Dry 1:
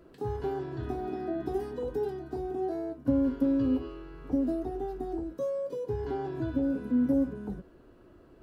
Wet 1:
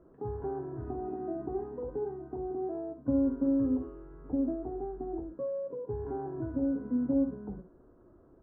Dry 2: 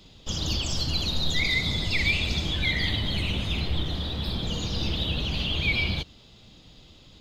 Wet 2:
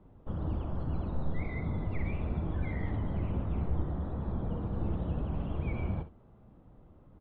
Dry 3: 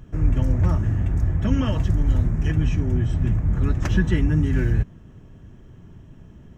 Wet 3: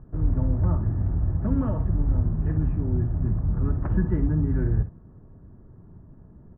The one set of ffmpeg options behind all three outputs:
ffmpeg -i in.wav -filter_complex "[0:a]lowpass=frequency=1300:width=0.5412,lowpass=frequency=1300:width=1.3066,asplit=2[link_01][link_02];[link_02]aecho=0:1:51|62:0.158|0.224[link_03];[link_01][link_03]amix=inputs=2:normalize=0,volume=-3.5dB" out.wav

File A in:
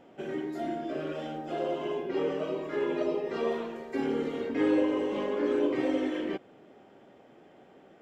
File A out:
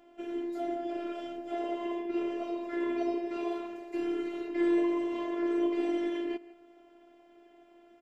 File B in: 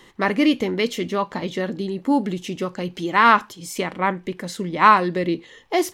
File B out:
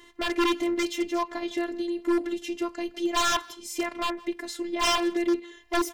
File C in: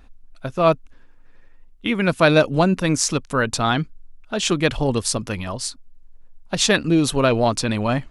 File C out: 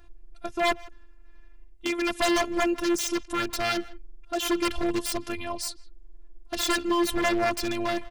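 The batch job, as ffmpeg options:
ffmpeg -i in.wav -filter_complex "[0:a]afftfilt=real='hypot(re,im)*cos(PI*b)':imag='0':win_size=512:overlap=0.75,aeval=exprs='0.126*(abs(mod(val(0)/0.126+3,4)-2)-1)':channel_layout=same,asplit=2[link_01][link_02];[link_02]adelay=160,highpass=300,lowpass=3400,asoftclip=type=hard:threshold=-26.5dB,volume=-18dB[link_03];[link_01][link_03]amix=inputs=2:normalize=0" out.wav

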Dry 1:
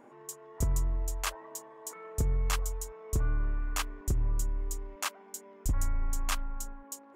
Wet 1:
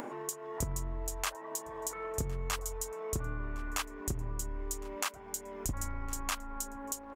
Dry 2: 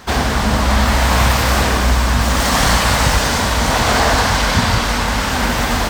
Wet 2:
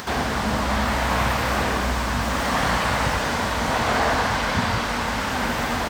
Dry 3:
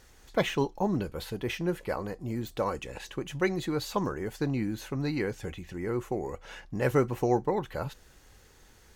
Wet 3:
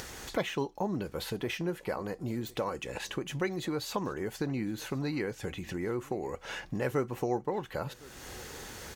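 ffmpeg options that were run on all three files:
ffmpeg -i in.wav -filter_complex "[0:a]acrossover=split=3000[link_01][link_02];[link_02]acompressor=threshold=-28dB:ratio=4:attack=1:release=60[link_03];[link_01][link_03]amix=inputs=2:normalize=0,highpass=frequency=120:poles=1,acompressor=mode=upward:threshold=-21dB:ratio=2.5,aecho=1:1:1060:0.0708,volume=-5.5dB" out.wav

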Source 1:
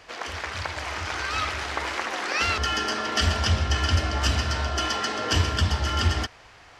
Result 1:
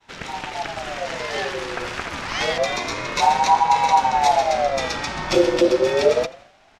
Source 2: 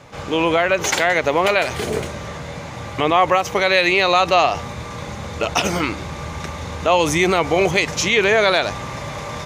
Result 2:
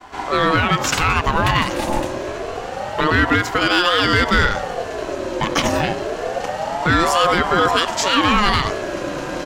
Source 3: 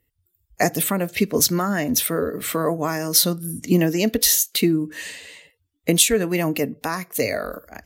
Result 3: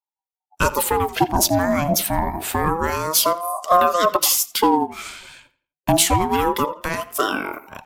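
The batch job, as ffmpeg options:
ffmpeg -i in.wav -filter_complex "[0:a]agate=range=-33dB:threshold=-44dB:ratio=3:detection=peak,lowshelf=frequency=180:gain=9.5,asplit=2[link_01][link_02];[link_02]aeval=exprs='0.282*(abs(mod(val(0)/0.282+3,4)-2)-1)':channel_layout=same,volume=-9dB[link_03];[link_01][link_03]amix=inputs=2:normalize=0,asplit=2[link_04][link_05];[link_05]adelay=84,lowpass=frequency=4100:poles=1,volume=-17dB,asplit=2[link_06][link_07];[link_07]adelay=84,lowpass=frequency=4100:poles=1,volume=0.36,asplit=2[link_08][link_09];[link_09]adelay=84,lowpass=frequency=4100:poles=1,volume=0.36[link_10];[link_04][link_06][link_08][link_10]amix=inputs=4:normalize=0,aeval=exprs='val(0)*sin(2*PI*660*n/s+660*0.35/0.27*sin(2*PI*0.27*n/s))':channel_layout=same" out.wav

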